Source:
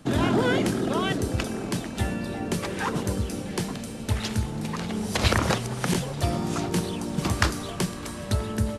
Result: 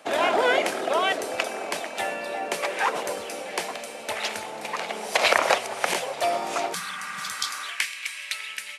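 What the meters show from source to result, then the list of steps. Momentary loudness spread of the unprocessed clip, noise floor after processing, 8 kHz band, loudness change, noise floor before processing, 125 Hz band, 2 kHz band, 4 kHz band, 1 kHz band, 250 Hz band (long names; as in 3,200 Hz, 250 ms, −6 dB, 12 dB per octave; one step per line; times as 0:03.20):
8 LU, −38 dBFS, +1.5 dB, +1.0 dB, −36 dBFS, −26.0 dB, +5.5 dB, +3.5 dB, +5.5 dB, −13.0 dB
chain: parametric band 2,300 Hz +7.5 dB 0.65 octaves
high-pass filter sweep 630 Hz → 2,300 Hz, 0:07.13–0:07.93
healed spectral selection 0:06.76–0:07.58, 220–3,100 Hz after
level +1 dB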